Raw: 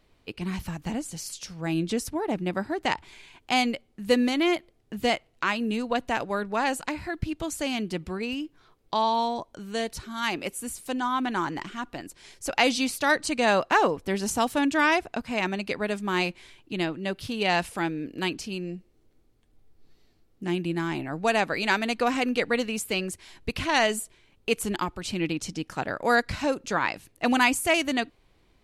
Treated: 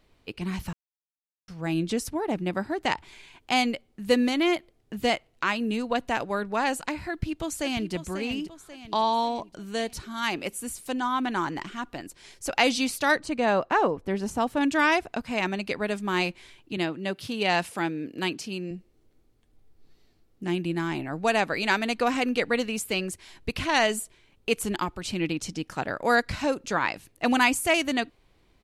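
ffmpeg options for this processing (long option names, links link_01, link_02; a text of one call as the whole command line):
ffmpeg -i in.wav -filter_complex "[0:a]asplit=2[link_01][link_02];[link_02]afade=type=in:start_time=7.1:duration=0.01,afade=type=out:start_time=7.93:duration=0.01,aecho=0:1:540|1080|1620|2160|2700:0.316228|0.158114|0.0790569|0.0395285|0.0197642[link_03];[link_01][link_03]amix=inputs=2:normalize=0,asettb=1/sr,asplit=3[link_04][link_05][link_06];[link_04]atrim=end=13.194[link_07];[link_05]atrim=start=13.19:end=14.61,asetpts=PTS-STARTPTS,afade=type=in:duration=0.004:curve=qsin,afade=type=out:start_time=1.416:duration=0.004:curve=qsin,highshelf=frequency=2400:gain=-11.5[link_08];[link_06]atrim=start=14.606[link_09];[link_07][link_08]acrossfade=duration=0.004:curve1=hsin:curve2=qsin[link_10];[link_10][link_09]acrossfade=duration=0.004:curve1=qsin:curve2=hsin,asettb=1/sr,asplit=3[link_11][link_12][link_13];[link_11]atrim=end=16.774[link_14];[link_12]atrim=start=16.77:end=18.71,asetpts=PTS-STARTPTS,afade=type=in:duration=0.004:curve=qsin,afade=type=out:start_time=1.936:duration=0.004:curve=qsin,highpass=120[link_15];[link_13]atrim=start=18.706[link_16];[link_14][link_15]acrossfade=duration=0.004:curve1=hsin:curve2=qsin[link_17];[link_17][link_16]acrossfade=duration=0.004:curve1=qsin:curve2=hsin,asplit=3[link_18][link_19][link_20];[link_18]atrim=end=0.73,asetpts=PTS-STARTPTS,afade=type=out:start_time=0.726:duration=0.004:curve=hsin[link_21];[link_19]atrim=start=0.73:end=1.48,asetpts=PTS-STARTPTS,volume=0[link_22];[link_20]atrim=start=1.48,asetpts=PTS-STARTPTS,afade=type=in:duration=0.004:curve=hsin[link_23];[link_21][link_22][link_23]concat=n=3:v=0:a=1" out.wav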